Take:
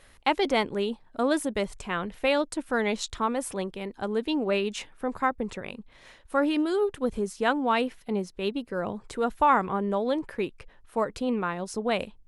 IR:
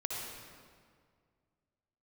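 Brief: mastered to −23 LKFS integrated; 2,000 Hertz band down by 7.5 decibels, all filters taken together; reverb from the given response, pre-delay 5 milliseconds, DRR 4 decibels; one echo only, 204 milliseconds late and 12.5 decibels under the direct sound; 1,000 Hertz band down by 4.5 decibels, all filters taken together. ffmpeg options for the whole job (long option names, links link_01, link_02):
-filter_complex "[0:a]equalizer=frequency=1000:width_type=o:gain=-3.5,equalizer=frequency=2000:width_type=o:gain=-9,aecho=1:1:204:0.237,asplit=2[link_01][link_02];[1:a]atrim=start_sample=2205,adelay=5[link_03];[link_02][link_03]afir=irnorm=-1:irlink=0,volume=-7dB[link_04];[link_01][link_04]amix=inputs=2:normalize=0,volume=5.5dB"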